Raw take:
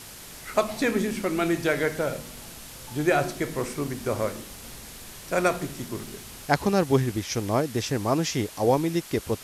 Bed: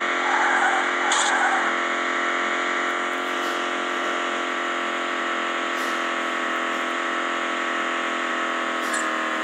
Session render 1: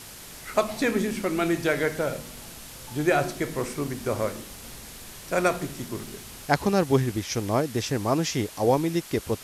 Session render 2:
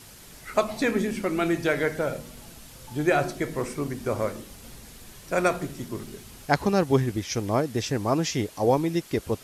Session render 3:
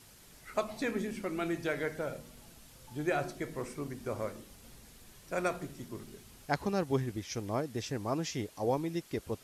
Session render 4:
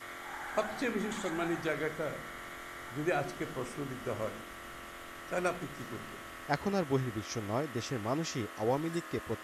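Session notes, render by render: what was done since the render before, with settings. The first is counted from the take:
no audible change
noise reduction 6 dB, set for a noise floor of -43 dBFS
trim -9.5 dB
add bed -22 dB

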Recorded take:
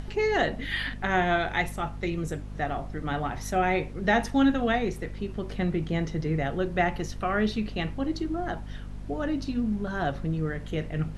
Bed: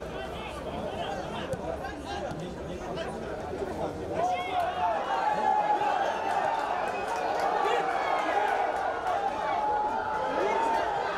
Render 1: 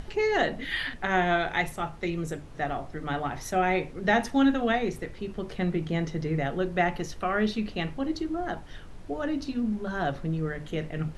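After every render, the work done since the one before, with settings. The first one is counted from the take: hum notches 50/100/150/200/250/300 Hz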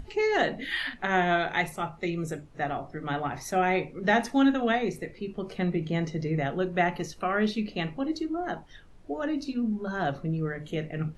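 noise print and reduce 10 dB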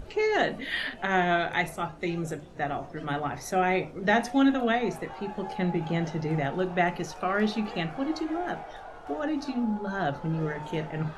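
add bed -14 dB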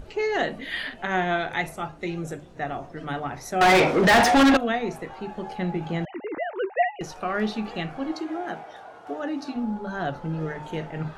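3.61–4.57 s: overdrive pedal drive 34 dB, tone 3.3 kHz, clips at -9 dBFS; 6.05–7.01 s: formants replaced by sine waves; 8.12–9.56 s: high-pass 140 Hz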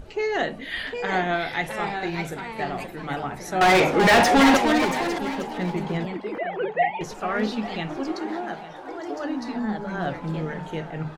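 ever faster or slower copies 778 ms, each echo +2 st, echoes 2, each echo -6 dB; delay 852 ms -16 dB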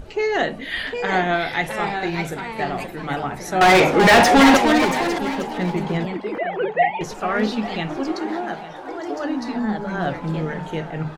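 trim +4 dB

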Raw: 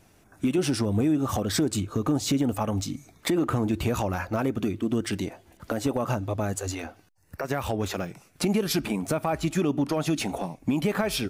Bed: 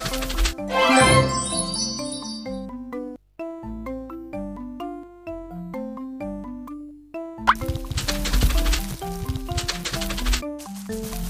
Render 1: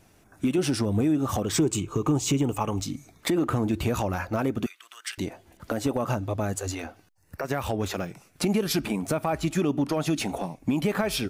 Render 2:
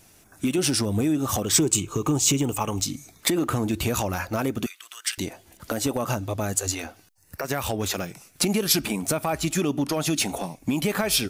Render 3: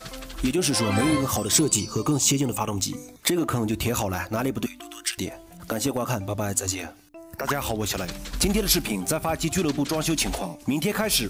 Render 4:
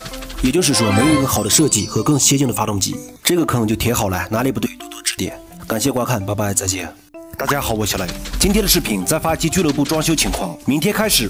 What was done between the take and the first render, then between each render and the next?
1.45–2.81 s: rippled EQ curve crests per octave 0.71, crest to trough 8 dB; 4.66–5.18 s: high-pass 1.2 kHz 24 dB/octave
treble shelf 3.2 kHz +11.5 dB
add bed -11.5 dB
trim +8 dB; peak limiter -1 dBFS, peak gain reduction 3 dB

